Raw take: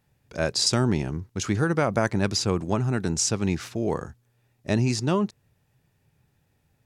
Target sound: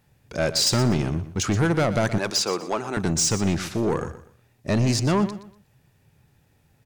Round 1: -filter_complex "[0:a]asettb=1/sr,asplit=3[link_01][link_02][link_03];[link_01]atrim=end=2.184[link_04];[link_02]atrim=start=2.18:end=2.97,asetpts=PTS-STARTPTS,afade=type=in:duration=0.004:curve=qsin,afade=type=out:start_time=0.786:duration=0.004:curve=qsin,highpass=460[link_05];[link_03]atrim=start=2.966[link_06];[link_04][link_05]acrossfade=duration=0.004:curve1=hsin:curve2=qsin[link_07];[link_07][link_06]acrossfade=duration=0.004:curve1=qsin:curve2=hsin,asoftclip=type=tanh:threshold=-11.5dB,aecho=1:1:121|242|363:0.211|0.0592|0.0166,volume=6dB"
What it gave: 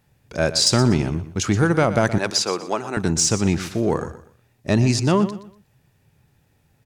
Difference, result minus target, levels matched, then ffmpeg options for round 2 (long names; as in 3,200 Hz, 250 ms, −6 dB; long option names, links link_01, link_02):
soft clipping: distortion −13 dB
-filter_complex "[0:a]asettb=1/sr,asplit=3[link_01][link_02][link_03];[link_01]atrim=end=2.184[link_04];[link_02]atrim=start=2.18:end=2.97,asetpts=PTS-STARTPTS,afade=type=in:duration=0.004:curve=qsin,afade=type=out:start_time=0.786:duration=0.004:curve=qsin,highpass=460[link_05];[link_03]atrim=start=2.966[link_06];[link_04][link_05]acrossfade=duration=0.004:curve1=hsin:curve2=qsin[link_07];[link_07][link_06]acrossfade=duration=0.004:curve1=qsin:curve2=hsin,asoftclip=type=tanh:threshold=-22dB,aecho=1:1:121|242|363:0.211|0.0592|0.0166,volume=6dB"